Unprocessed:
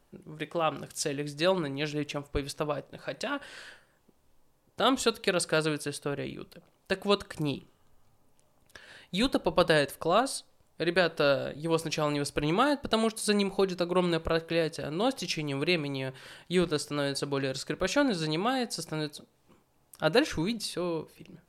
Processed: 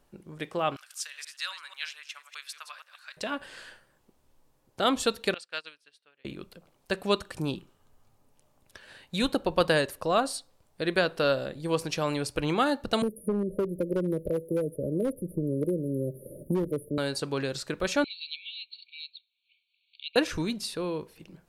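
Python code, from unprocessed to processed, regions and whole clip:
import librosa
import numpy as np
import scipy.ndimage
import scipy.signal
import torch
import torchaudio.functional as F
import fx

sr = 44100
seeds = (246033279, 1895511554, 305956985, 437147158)

y = fx.chain(x, sr, fx.reverse_delay(ms=122, wet_db=-9.5),
    fx.highpass(hz=1300.0, slope=24),
    fx.tremolo(hz=1.9, depth=0.29), at=(0.76, 3.17))
y = fx.chain(y, sr, fx.bandpass_q(hz=2900.0, q=1.1),
    fx.upward_expand(threshold_db=-46.0, expansion=2.5), at=(5.34, 6.25))
y = fx.chain(y, sr, fx.brickwall_bandstop(low_hz=630.0, high_hz=9400.0),
    fx.clip_hard(threshold_db=-22.5),
    fx.band_squash(depth_pct=100), at=(13.02, 16.98))
y = fx.chain(y, sr, fx.transient(attack_db=0, sustain_db=-4),
    fx.brickwall_bandpass(low_hz=2200.0, high_hz=4500.0),
    fx.band_squash(depth_pct=40), at=(18.04, 20.16))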